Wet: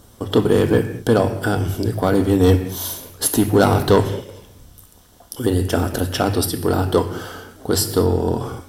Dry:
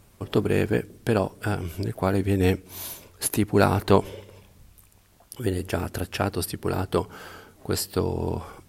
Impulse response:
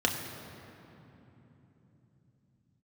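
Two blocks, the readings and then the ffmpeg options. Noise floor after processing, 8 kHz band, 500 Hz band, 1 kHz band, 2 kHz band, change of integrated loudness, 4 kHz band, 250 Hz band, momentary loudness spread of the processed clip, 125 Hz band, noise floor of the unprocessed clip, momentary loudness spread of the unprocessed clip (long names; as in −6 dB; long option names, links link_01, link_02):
−48 dBFS, +8.0 dB, +7.5 dB, +6.0 dB, +4.5 dB, +7.0 dB, +8.0 dB, +7.5 dB, 11 LU, +7.0 dB, −57 dBFS, 15 LU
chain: -filter_complex "[0:a]asoftclip=type=tanh:threshold=-15dB,asplit=2[link_01][link_02];[1:a]atrim=start_sample=2205,afade=type=out:start_time=0.27:duration=0.01,atrim=end_sample=12348,highshelf=frequency=5000:gain=9[link_03];[link_02][link_03]afir=irnorm=-1:irlink=0,volume=-12dB[link_04];[link_01][link_04]amix=inputs=2:normalize=0,volume=5dB"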